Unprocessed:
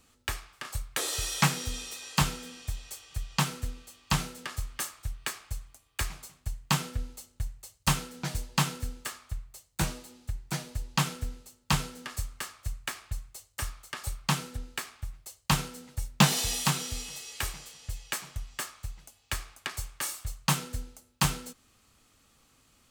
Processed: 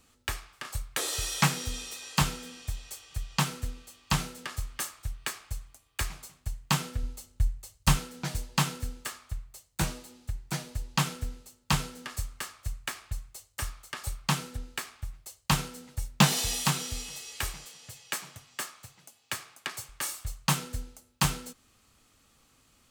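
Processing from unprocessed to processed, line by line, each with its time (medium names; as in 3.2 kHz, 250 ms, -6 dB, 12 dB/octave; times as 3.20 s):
7.03–7.97 s: bass shelf 94 Hz +10.5 dB
17.65–19.89 s: high-pass 130 Hz 24 dB/octave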